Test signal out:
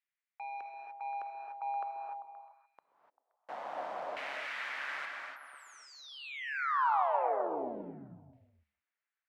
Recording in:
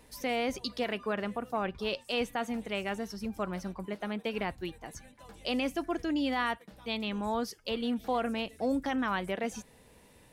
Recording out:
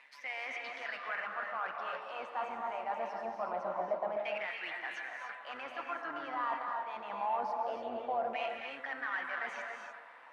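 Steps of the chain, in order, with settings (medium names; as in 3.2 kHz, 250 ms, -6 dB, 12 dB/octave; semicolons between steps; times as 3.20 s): high-pass 230 Hz 12 dB/octave; peaking EQ 400 Hz -14.5 dB 0.3 oct; gate -54 dBFS, range -7 dB; reverse; compression 12:1, threshold -42 dBFS; reverse; overdrive pedal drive 24 dB, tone 1.4 kHz, clips at -25.5 dBFS; repeats whose band climbs or falls 131 ms, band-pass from 350 Hz, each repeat 0.7 oct, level -5 dB; AM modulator 140 Hz, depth 35%; LFO band-pass saw down 0.24 Hz 620–2200 Hz; gated-style reverb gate 320 ms rising, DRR 2 dB; trim +7.5 dB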